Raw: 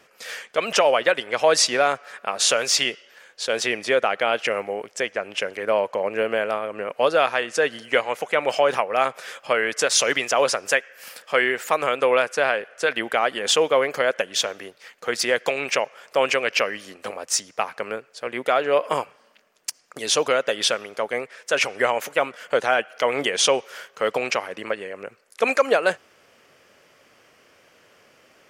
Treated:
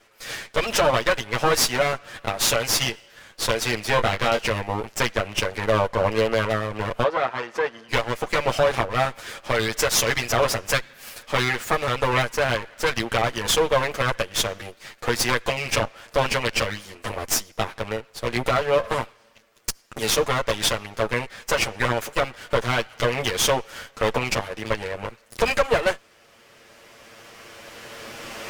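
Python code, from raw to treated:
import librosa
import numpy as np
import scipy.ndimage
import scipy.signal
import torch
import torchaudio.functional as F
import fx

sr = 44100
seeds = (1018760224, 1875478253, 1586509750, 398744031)

y = fx.lower_of_two(x, sr, delay_ms=8.8)
y = fx.recorder_agc(y, sr, target_db=-10.0, rise_db_per_s=8.6, max_gain_db=30)
y = fx.doubler(y, sr, ms=21.0, db=-6.0, at=(3.91, 4.39))
y = fx.bandpass_q(y, sr, hz=810.0, q=0.67, at=(7.03, 7.88), fade=0.02)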